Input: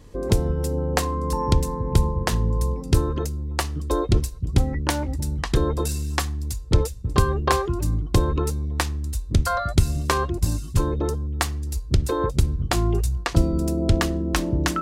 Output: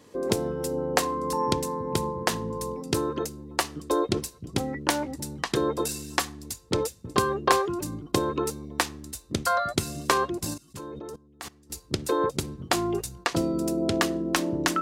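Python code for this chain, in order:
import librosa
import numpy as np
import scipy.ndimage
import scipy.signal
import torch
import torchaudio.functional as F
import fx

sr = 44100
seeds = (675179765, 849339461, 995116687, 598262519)

y = scipy.signal.sosfilt(scipy.signal.butter(2, 230.0, 'highpass', fs=sr, output='sos'), x)
y = fx.level_steps(y, sr, step_db=19, at=(10.54, 11.7))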